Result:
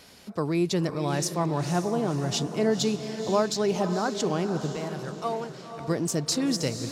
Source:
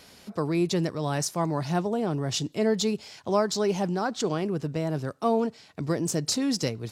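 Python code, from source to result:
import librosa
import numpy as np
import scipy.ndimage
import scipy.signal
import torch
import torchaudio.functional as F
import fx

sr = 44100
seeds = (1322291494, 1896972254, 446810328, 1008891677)

y = fx.peak_eq(x, sr, hz=240.0, db=-14.0, octaves=2.1, at=(4.75, 5.88))
y = fx.echo_diffused(y, sr, ms=508, feedback_pct=47, wet_db=-9.0)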